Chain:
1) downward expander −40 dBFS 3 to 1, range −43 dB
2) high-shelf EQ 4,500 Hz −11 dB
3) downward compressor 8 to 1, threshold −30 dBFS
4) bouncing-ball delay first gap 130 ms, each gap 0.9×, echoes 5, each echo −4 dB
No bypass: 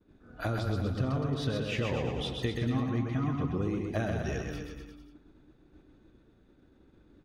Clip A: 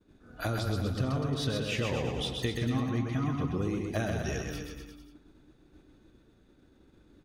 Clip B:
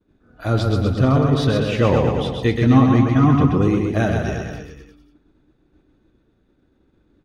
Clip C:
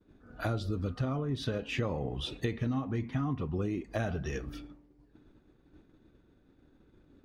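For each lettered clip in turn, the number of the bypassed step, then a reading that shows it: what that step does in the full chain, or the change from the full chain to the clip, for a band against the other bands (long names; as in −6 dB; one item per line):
2, 8 kHz band +7.0 dB
3, average gain reduction 11.5 dB
4, echo-to-direct ratio −2.0 dB to none audible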